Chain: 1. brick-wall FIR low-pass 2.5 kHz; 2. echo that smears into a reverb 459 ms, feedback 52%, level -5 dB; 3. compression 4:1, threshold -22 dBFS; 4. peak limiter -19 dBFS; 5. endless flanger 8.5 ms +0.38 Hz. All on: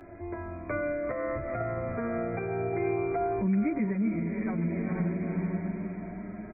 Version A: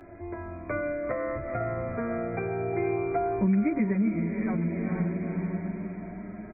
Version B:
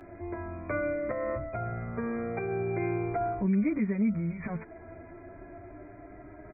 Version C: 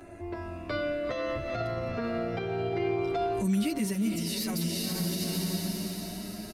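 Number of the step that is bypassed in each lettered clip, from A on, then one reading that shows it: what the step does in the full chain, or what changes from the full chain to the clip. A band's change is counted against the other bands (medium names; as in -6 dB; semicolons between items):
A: 4, crest factor change +2.0 dB; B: 2, momentary loudness spread change +9 LU; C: 1, momentary loudness spread change -2 LU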